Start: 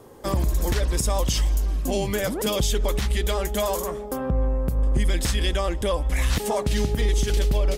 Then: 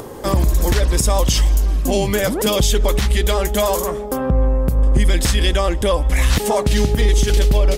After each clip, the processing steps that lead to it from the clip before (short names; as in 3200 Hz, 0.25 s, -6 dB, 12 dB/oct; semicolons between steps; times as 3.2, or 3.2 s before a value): upward compressor, threshold -32 dBFS; gain +7 dB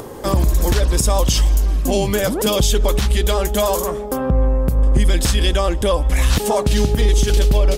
dynamic EQ 2000 Hz, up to -5 dB, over -40 dBFS, Q 3.9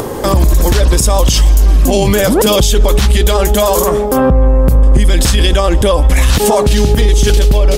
maximiser +13.5 dB; gain -1 dB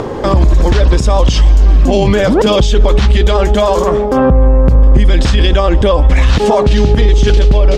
air absorption 150 m; gain +1 dB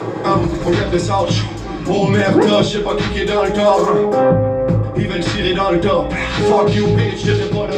reverb RT60 0.35 s, pre-delay 3 ms, DRR -14 dB; gain -13 dB